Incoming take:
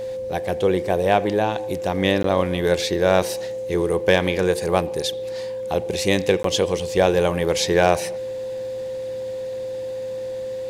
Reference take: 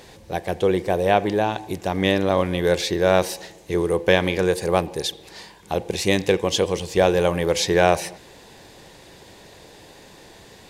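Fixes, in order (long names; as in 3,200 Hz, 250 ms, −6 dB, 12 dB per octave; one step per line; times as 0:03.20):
clipped peaks rebuilt −4 dBFS
hum removal 112.2 Hz, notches 5
notch filter 520 Hz, Q 30
repair the gap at 0:02.23/0:06.43, 13 ms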